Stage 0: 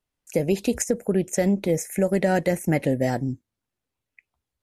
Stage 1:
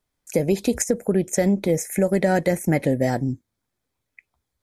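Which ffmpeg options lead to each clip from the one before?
ffmpeg -i in.wav -filter_complex "[0:a]bandreject=frequency=2800:width=7.2,asplit=2[link_01][link_02];[link_02]acompressor=threshold=-30dB:ratio=6,volume=-1.5dB[link_03];[link_01][link_03]amix=inputs=2:normalize=0" out.wav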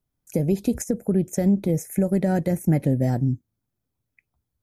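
ffmpeg -i in.wav -af "equalizer=frequency=125:width_type=o:width=1:gain=5,equalizer=frequency=500:width_type=o:width=1:gain=-5,equalizer=frequency=1000:width_type=o:width=1:gain=-5,equalizer=frequency=2000:width_type=o:width=1:gain=-9,equalizer=frequency=4000:width_type=o:width=1:gain=-7,equalizer=frequency=8000:width_type=o:width=1:gain=-7" out.wav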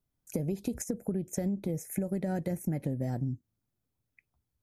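ffmpeg -i in.wav -af "acompressor=threshold=-26dB:ratio=6,volume=-3dB" out.wav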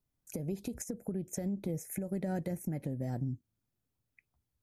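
ffmpeg -i in.wav -af "alimiter=level_in=0.5dB:limit=-24dB:level=0:latency=1:release=268,volume=-0.5dB,volume=-1.5dB" out.wav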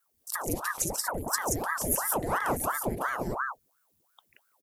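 ffmpeg -i in.wav -af "aecho=1:1:139.9|177.8:0.355|0.794,crystalizer=i=2.5:c=0,aeval=exprs='val(0)*sin(2*PI*780*n/s+780*0.9/2.9*sin(2*PI*2.9*n/s))':channel_layout=same,volume=5.5dB" out.wav

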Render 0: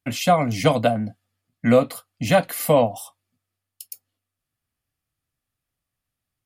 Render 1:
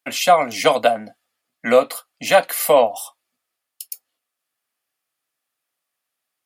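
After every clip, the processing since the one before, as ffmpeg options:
ffmpeg -i in.wav -af "highpass=490,volume=5.5dB" out.wav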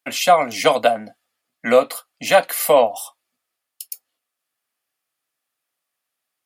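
ffmpeg -i in.wav -af anull out.wav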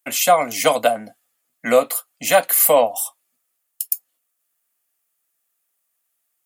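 ffmpeg -i in.wav -af "aexciter=amount=3.5:drive=3.4:freq=6500,volume=-1dB" out.wav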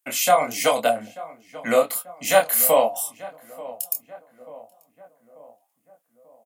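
ffmpeg -i in.wav -filter_complex "[0:a]asplit=2[link_01][link_02];[link_02]adelay=888,lowpass=frequency=1500:poles=1,volume=-17dB,asplit=2[link_03][link_04];[link_04]adelay=888,lowpass=frequency=1500:poles=1,volume=0.53,asplit=2[link_05][link_06];[link_06]adelay=888,lowpass=frequency=1500:poles=1,volume=0.53,asplit=2[link_07][link_08];[link_08]adelay=888,lowpass=frequency=1500:poles=1,volume=0.53,asplit=2[link_09][link_10];[link_10]adelay=888,lowpass=frequency=1500:poles=1,volume=0.53[link_11];[link_01][link_03][link_05][link_07][link_09][link_11]amix=inputs=6:normalize=0,flanger=delay=22.5:depth=4.5:speed=1.4" out.wav

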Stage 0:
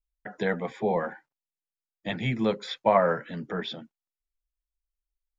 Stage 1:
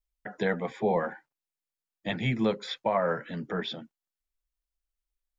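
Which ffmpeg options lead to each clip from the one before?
ffmpeg -i in.wav -af "alimiter=limit=-15dB:level=0:latency=1:release=297" out.wav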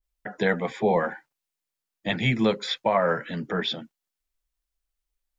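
ffmpeg -i in.wav -af "adynamicequalizer=threshold=0.0112:dfrequency=1600:dqfactor=0.7:tfrequency=1600:tqfactor=0.7:attack=5:release=100:ratio=0.375:range=2:mode=boostabove:tftype=highshelf,volume=4dB" out.wav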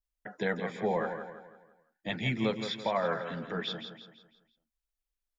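ffmpeg -i in.wav -af "aecho=1:1:167|334|501|668|835:0.376|0.158|0.0663|0.0278|0.0117,volume=-8dB" out.wav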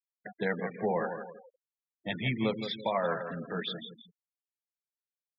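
ffmpeg -i in.wav -af "afftfilt=real='re*gte(hypot(re,im),0.0141)':imag='im*gte(hypot(re,im),0.0141)':win_size=1024:overlap=0.75" out.wav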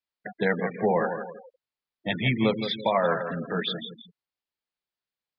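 ffmpeg -i in.wav -af "aresample=11025,aresample=44100,volume=6.5dB" out.wav

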